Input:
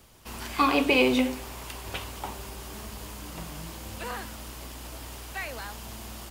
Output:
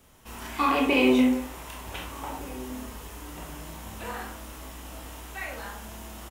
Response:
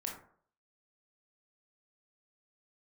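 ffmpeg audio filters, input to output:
-filter_complex "[0:a]equalizer=f=4.6k:t=o:w=0.24:g=-8,asplit=2[a][b];[b]adelay=1516,volume=-18dB,highshelf=f=4k:g=-34.1[c];[a][c]amix=inputs=2:normalize=0[d];[1:a]atrim=start_sample=2205[e];[d][e]afir=irnorm=-1:irlink=0"

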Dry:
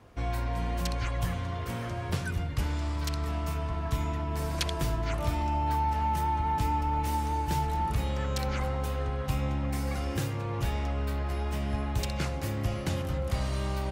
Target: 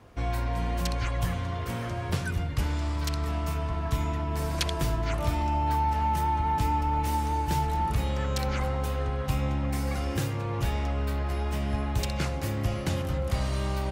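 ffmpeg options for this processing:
-af "volume=2dB"

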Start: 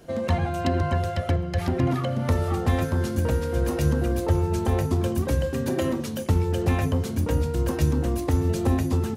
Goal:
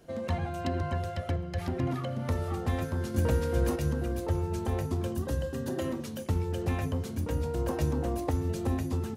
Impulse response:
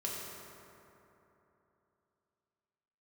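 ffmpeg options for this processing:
-filter_complex "[0:a]asettb=1/sr,asplit=3[a][b][c];[a]atrim=end=3.144[d];[b]atrim=start=3.14:end=3.76,asetpts=PTS-STARTPTS,afade=t=in:d=0.004:c=qsin,afade=t=out:st=0.616:d=0.004:c=qsin,acontrast=23[e];[c]atrim=start=3.756[f];[d][e]acrossfade=d=0.004:c1=hsin:c2=qsin[g];[g][f]acrossfade=d=0.004:c1=qsin:c2=hsin,asettb=1/sr,asplit=3[h][i][j];[h]atrim=end=5.154[k];[i]atrim=start=5.15:end=5.8,asetpts=PTS-STARTPTS,afade=t=in:d=0.004:c=qsin,afade=t=out:st=0.646:d=0.004:c=qsin,bandreject=f=2.3k:w=5[l];[j]atrim=start=5.796[m];[k][l]acrossfade=d=0.004:c1=hsin:c2=qsin[n];[n][m]acrossfade=d=0.004:c1=qsin:c2=hsin,asettb=1/sr,asplit=3[o][p][q];[o]atrim=end=7.434[r];[p]atrim=start=7.43:end=8.31,asetpts=PTS-STARTPTS,afade=t=in:d=0.004:c=qsin,afade=t=out:st=0.876:d=0.004:c=qsin,equalizer=f=700:w=0.99:g=7.5[s];[q]atrim=start=8.306[t];[r][s]acrossfade=d=0.004:c1=hsin:c2=qsin[u];[u][t]acrossfade=d=0.004:c1=qsin:c2=hsin,volume=-7.5dB"

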